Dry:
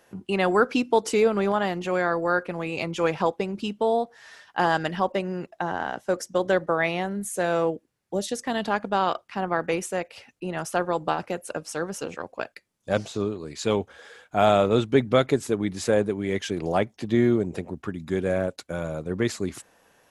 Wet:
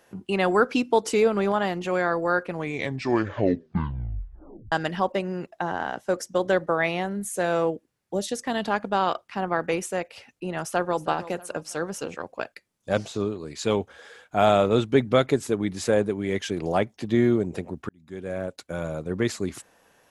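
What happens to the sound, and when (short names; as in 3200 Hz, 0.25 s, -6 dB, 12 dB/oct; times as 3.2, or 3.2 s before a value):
2.5 tape stop 2.22 s
10.58–11.06 echo throw 0.32 s, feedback 40%, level -15.5 dB
17.89–18.83 fade in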